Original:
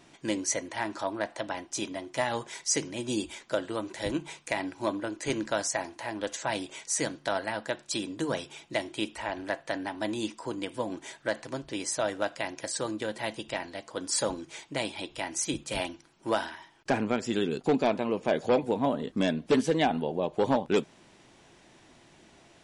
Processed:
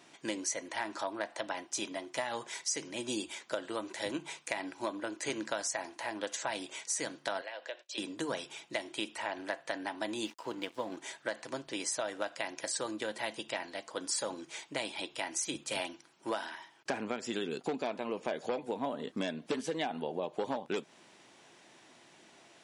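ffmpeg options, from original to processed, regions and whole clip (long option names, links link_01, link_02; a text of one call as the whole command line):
ffmpeg -i in.wav -filter_complex "[0:a]asettb=1/sr,asplit=3[link_01][link_02][link_03];[link_01]atrim=end=7.414[link_04];[link_02]atrim=start=7.41:end=7.98,asetpts=PTS-STARTPTS,afade=type=in:duration=0.004:curve=qsin,afade=type=out:start_time=0.566:duration=0.004:curve=qsin,agate=range=-33dB:threshold=-48dB:ratio=3:release=100:detection=peak,acompressor=threshold=-38dB:ratio=2.5:attack=3.2:release=140:knee=1:detection=peak,highpass=frequency=420:width=0.5412,highpass=frequency=420:width=1.3066,equalizer=frequency=550:width_type=q:width=4:gain=4,equalizer=frequency=870:width_type=q:width=4:gain=-6,equalizer=frequency=1300:width_type=q:width=4:gain=-7,equalizer=frequency=2800:width_type=q:width=4:gain=4,equalizer=frequency=4800:width_type=q:width=4:gain=-4,lowpass=frequency=5900:width=0.5412,lowpass=frequency=5900:width=1.3066[link_05];[link_03]atrim=start=7.976[link_06];[link_04][link_05]acrossfade=duration=0.004:curve1=hsin:curve2=qsin[link_07];[link_07][link_06]acrossfade=duration=0.004:curve1=qsin:curve2=hsin,asettb=1/sr,asplit=3[link_08][link_09][link_10];[link_08]atrim=end=10.254[link_11];[link_09]atrim=start=10.25:end=10.97,asetpts=PTS-STARTPTS,afade=type=in:duration=0.004:curve=qsin,afade=type=out:start_time=0.716:duration=0.004:curve=qsin,lowpass=5700,aeval=exprs='sgn(val(0))*max(abs(val(0))-0.00299,0)':channel_layout=same[link_12];[link_10]atrim=start=10.966[link_13];[link_11][link_12]acrossfade=duration=0.004:curve1=hsin:curve2=qsin[link_14];[link_14][link_13]acrossfade=duration=0.004:curve1=qsin:curve2=hsin,highpass=140,lowshelf=frequency=360:gain=-7.5,acompressor=threshold=-31dB:ratio=6" out.wav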